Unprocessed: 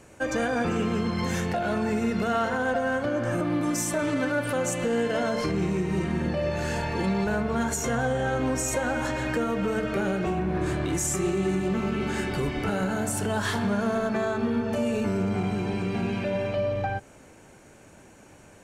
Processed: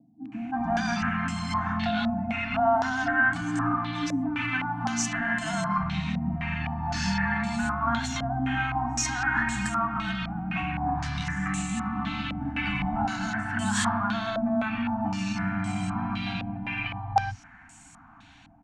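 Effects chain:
brick-wall band-stop 310–660 Hz
three-band delay without the direct sound mids, highs, lows 320/360 ms, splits 150/480 Hz
low-pass on a step sequencer 3.9 Hz 560–7,900 Hz

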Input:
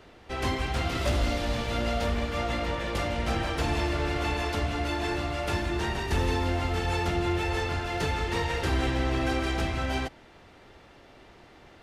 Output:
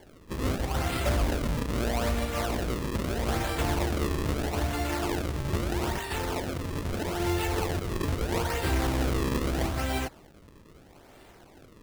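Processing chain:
0:05.98–0:07.20: low-shelf EQ 350 Hz −9.5 dB
sample-and-hold swept by an LFO 34×, swing 160% 0.78 Hz

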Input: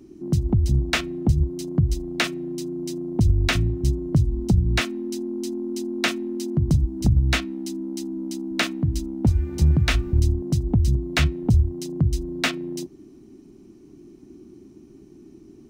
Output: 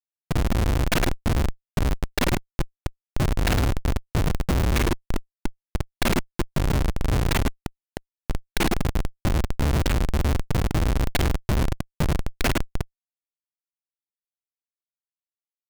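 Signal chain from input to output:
reversed piece by piece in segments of 34 ms
high-shelf EQ 2,700 Hz +4.5 dB
in parallel at −2 dB: downward compressor 5 to 1, threshold −27 dBFS, peak gain reduction 13 dB
on the sum: single-tap delay 106 ms −5 dB
comparator with hysteresis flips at −15.5 dBFS

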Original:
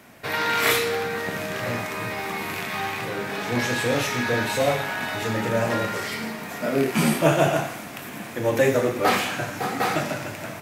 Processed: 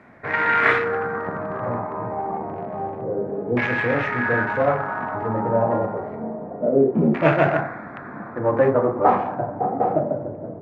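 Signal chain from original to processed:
adaptive Wiener filter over 15 samples
background noise violet −56 dBFS
auto-filter low-pass saw down 0.28 Hz 440–2,300 Hz
level +1 dB

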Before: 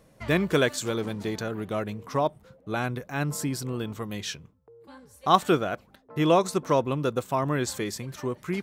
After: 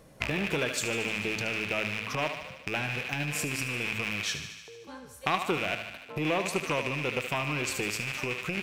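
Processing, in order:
loose part that buzzes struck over −37 dBFS, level −13 dBFS
hum removal 54.53 Hz, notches 5
downward compressor, threshold −27 dBFS, peak gain reduction 14 dB
feedback echo with a high-pass in the loop 75 ms, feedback 70%, high-pass 480 Hz, level −9 dB
saturating transformer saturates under 1,000 Hz
level +3.5 dB

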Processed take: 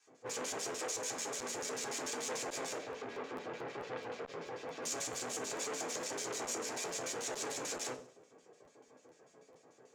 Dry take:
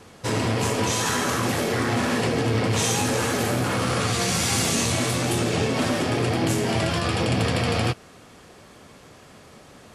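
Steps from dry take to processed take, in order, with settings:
high-shelf EQ 3,200 Hz −9.5 dB
mains-hum notches 50/100/150/200/250/300/350/400/450/500 Hz
wrap-around overflow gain 20 dB
flanger 1.6 Hz, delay 7.2 ms, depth 1 ms, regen +55%
auto-filter band-pass square 6.8 Hz 490–7,200 Hz
0:02.77–0:04.82: high-frequency loss of the air 350 metres
feedback echo with a high-pass in the loop 97 ms, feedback 42%, level −22 dB
convolution reverb RT60 0.35 s, pre-delay 3 ms, DRR −1 dB
regular buffer underruns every 0.22 s, samples 512, repeat, from 0:00.50
saturating transformer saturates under 1,900 Hz
level −3 dB

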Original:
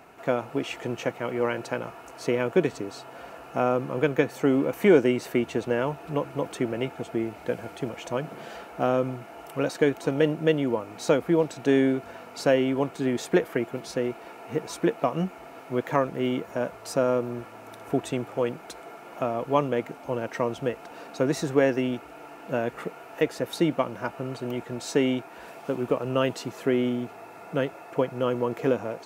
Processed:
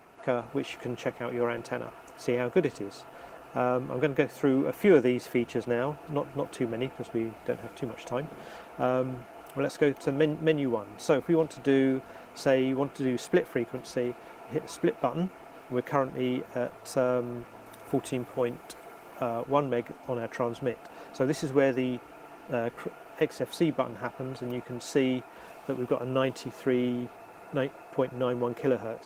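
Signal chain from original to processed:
0:17.67–0:19.43: high-shelf EQ 9,700 Hz +7.5 dB
level −2.5 dB
Opus 20 kbit/s 48,000 Hz

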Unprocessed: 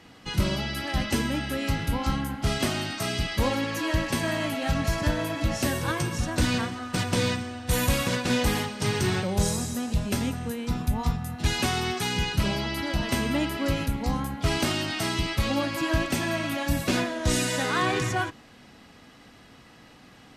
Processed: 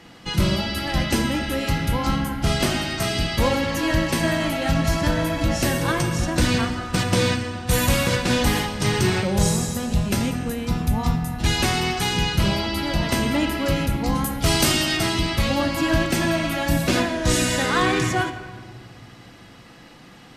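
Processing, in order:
0:14.15–0:14.97: high-shelf EQ 5,300 Hz +11 dB
rectangular room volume 2,300 cubic metres, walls mixed, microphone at 0.8 metres
level +4.5 dB

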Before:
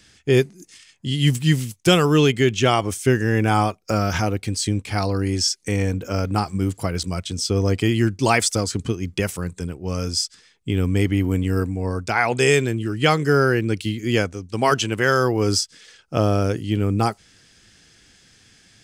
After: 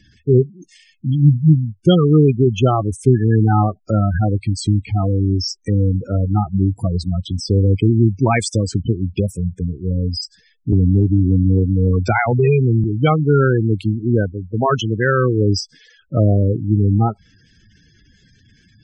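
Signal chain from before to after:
gate on every frequency bin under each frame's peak −10 dB strong
bass and treble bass +6 dB, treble −4 dB
0:10.72–0:12.84: multiband upward and downward compressor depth 100%
level +2 dB

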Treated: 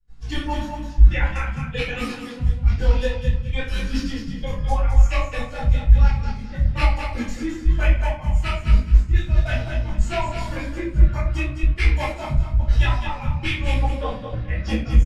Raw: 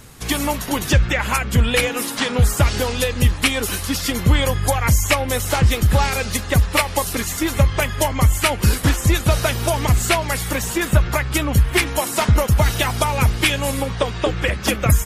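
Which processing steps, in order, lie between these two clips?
spectral dynamics exaggerated over time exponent 1.5
low-pass filter 3,900 Hz 12 dB per octave
low-shelf EQ 120 Hz +9.5 dB
notch filter 440 Hz, Q 12
hum removal 102.9 Hz, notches 3
reversed playback
downward compressor 6 to 1, threshold −24 dBFS, peak gain reduction 19.5 dB
reversed playback
gate pattern ".xxxx.xxx..x" 200 BPM −24 dB
on a send: repeating echo 210 ms, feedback 23%, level −7 dB
on the sum: rectangular room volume 37 cubic metres, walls mixed, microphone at 3 metres
micro pitch shift up and down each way 35 cents
level −7 dB

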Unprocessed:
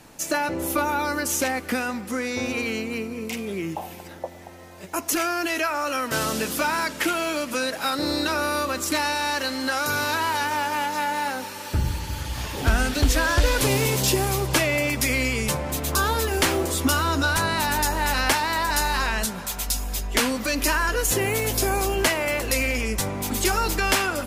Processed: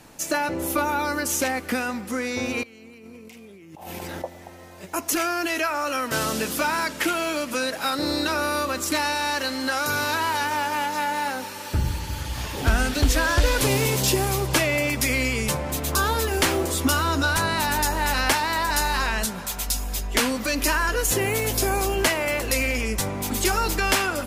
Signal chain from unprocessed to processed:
0:02.63–0:04.22: compressor whose output falls as the input rises −42 dBFS, ratio −1

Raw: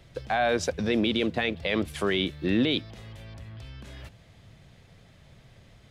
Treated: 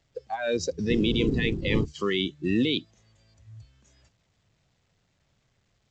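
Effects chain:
0:00.89–0:01.84: wind on the microphone 300 Hz −22 dBFS
noise reduction from a noise print of the clip's start 19 dB
A-law companding 128 kbit/s 16,000 Hz

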